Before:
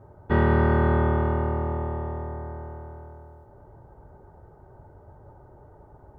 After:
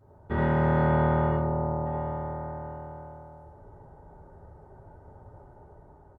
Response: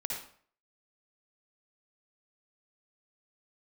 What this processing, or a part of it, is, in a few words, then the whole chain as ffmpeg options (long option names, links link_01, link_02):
speakerphone in a meeting room: -filter_complex "[0:a]asplit=3[link_01][link_02][link_03];[link_01]afade=type=out:start_time=1.3:duration=0.02[link_04];[link_02]lowpass=1100,afade=type=in:start_time=1.3:duration=0.02,afade=type=out:start_time=1.85:duration=0.02[link_05];[link_03]afade=type=in:start_time=1.85:duration=0.02[link_06];[link_04][link_05][link_06]amix=inputs=3:normalize=0[link_07];[1:a]atrim=start_sample=2205[link_08];[link_07][link_08]afir=irnorm=-1:irlink=0,asplit=2[link_09][link_10];[link_10]adelay=210,highpass=300,lowpass=3400,asoftclip=type=hard:threshold=-17dB,volume=-24dB[link_11];[link_09][link_11]amix=inputs=2:normalize=0,dynaudnorm=framelen=110:gausssize=13:maxgain=3.5dB,volume=-6dB" -ar 48000 -c:a libopus -b:a 32k